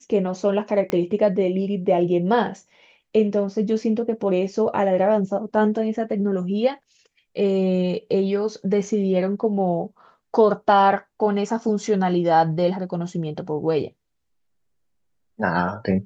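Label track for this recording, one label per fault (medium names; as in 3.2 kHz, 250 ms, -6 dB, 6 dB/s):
0.900000	0.900000	pop -11 dBFS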